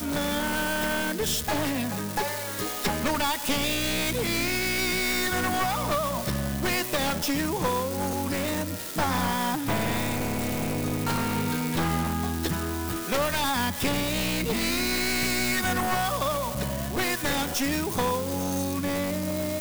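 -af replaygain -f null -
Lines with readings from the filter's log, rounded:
track_gain = +9.3 dB
track_peak = 0.170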